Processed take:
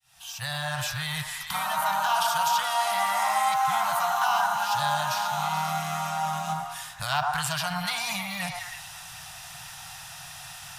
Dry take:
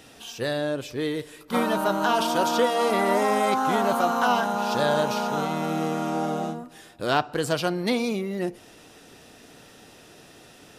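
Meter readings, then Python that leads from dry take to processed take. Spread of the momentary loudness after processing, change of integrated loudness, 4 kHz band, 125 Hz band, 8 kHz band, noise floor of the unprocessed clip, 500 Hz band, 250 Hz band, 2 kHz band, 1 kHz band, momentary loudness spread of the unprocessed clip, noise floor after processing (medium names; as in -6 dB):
16 LU, -2.0 dB, +2.0 dB, -2.0 dB, +5.0 dB, -50 dBFS, -12.0 dB, -14.5 dB, +1.0 dB, +0.5 dB, 9 LU, -43 dBFS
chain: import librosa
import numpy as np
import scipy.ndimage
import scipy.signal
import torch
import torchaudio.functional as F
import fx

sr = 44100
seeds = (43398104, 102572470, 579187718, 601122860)

p1 = fx.fade_in_head(x, sr, length_s=0.84)
p2 = scipy.signal.sosfilt(scipy.signal.ellip(3, 1.0, 60, [150.0, 780.0], 'bandstop', fs=sr, output='sos'), p1)
p3 = fx.high_shelf(p2, sr, hz=6300.0, db=8.5)
p4 = fx.over_compress(p3, sr, threshold_db=-38.0, ratio=-1.0)
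p5 = p3 + (p4 * 10.0 ** (-1.0 / 20.0))
p6 = fx.quant_float(p5, sr, bits=4)
p7 = p6 + fx.echo_stepped(p6, sr, ms=107, hz=880.0, octaves=0.7, feedback_pct=70, wet_db=0, dry=0)
y = p7 * 10.0 ** (-3.0 / 20.0)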